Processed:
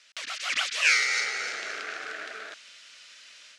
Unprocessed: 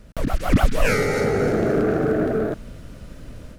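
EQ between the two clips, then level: Butterworth band-pass 3900 Hz, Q 0.76; air absorption 51 m; high shelf 3000 Hz +8 dB; +4.5 dB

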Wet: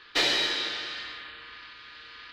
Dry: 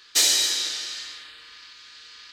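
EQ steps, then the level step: air absorption 390 m; +7.5 dB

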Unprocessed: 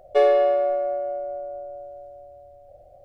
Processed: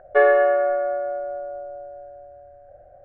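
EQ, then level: synth low-pass 1600 Hz, resonance Q 10; 0.0 dB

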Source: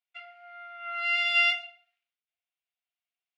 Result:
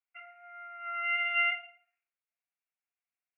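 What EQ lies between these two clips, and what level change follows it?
band-pass 1600 Hz, Q 0.6; steep low-pass 2700 Hz 72 dB/oct; air absorption 120 m; 0.0 dB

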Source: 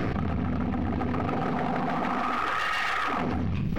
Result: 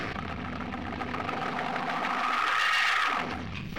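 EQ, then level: tilt shelf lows -7 dB, about 1300 Hz; low shelf 340 Hz -5.5 dB; high shelf 7500 Hz -7 dB; +1.5 dB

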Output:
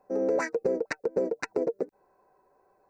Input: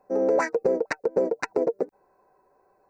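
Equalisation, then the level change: dynamic EQ 860 Hz, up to -6 dB, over -38 dBFS, Q 1.1; -2.0 dB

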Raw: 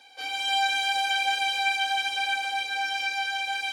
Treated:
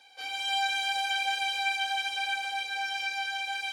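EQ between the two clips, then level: HPF 380 Hz 6 dB/oct; -3.5 dB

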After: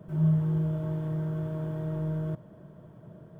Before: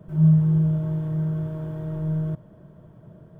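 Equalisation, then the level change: low shelf 74 Hz -10 dB; dynamic EQ 160 Hz, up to -6 dB, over -30 dBFS; 0.0 dB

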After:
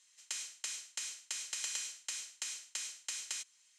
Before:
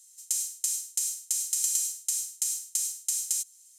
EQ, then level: Chebyshev band-pass 220–2300 Hz, order 2; low shelf 310 Hz -6.5 dB; +10.0 dB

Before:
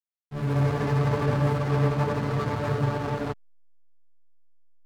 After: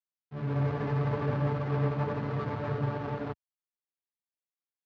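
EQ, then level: HPF 75 Hz; air absorption 200 m; -5.0 dB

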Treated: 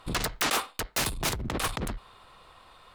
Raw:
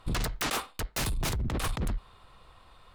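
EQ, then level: low shelf 170 Hz -11 dB; +4.5 dB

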